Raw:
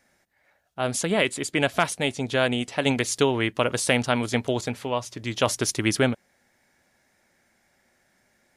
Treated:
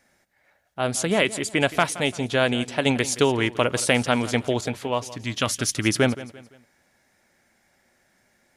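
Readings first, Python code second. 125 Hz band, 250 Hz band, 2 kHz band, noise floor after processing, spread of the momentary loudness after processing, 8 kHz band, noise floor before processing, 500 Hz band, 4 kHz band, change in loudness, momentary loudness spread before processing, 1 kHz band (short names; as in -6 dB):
+1.5 dB, +1.5 dB, +1.5 dB, -66 dBFS, 7 LU, +1.5 dB, -67 dBFS, +1.5 dB, +1.5 dB, +1.5 dB, 7 LU, +1.5 dB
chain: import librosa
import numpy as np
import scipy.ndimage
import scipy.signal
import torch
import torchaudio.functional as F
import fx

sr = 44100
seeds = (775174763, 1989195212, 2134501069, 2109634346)

p1 = fx.spec_box(x, sr, start_s=5.1, length_s=0.75, low_hz=320.0, high_hz=1100.0, gain_db=-7)
p2 = p1 + fx.echo_feedback(p1, sr, ms=171, feedback_pct=38, wet_db=-17.0, dry=0)
y = p2 * 10.0 ** (1.5 / 20.0)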